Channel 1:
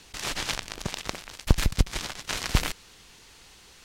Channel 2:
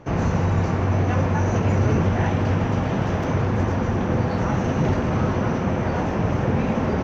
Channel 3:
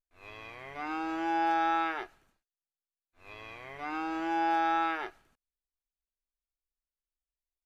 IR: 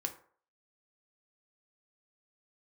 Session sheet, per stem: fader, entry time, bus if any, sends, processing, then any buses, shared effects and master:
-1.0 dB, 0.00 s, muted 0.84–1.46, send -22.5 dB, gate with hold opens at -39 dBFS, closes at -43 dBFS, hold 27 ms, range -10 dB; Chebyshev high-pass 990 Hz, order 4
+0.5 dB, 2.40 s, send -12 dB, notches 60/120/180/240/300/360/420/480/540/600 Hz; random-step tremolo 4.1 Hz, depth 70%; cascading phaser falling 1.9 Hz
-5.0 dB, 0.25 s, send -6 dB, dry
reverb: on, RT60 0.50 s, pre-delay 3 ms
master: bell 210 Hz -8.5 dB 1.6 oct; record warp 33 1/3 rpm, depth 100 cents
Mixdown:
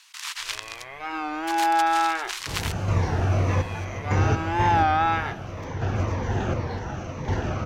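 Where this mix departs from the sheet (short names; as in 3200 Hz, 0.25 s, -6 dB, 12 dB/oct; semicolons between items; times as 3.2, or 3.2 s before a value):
stem 1: missing gate with hold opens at -39 dBFS, closes at -43 dBFS, hold 27 ms, range -10 dB; stem 3 -5.0 dB -> +3.0 dB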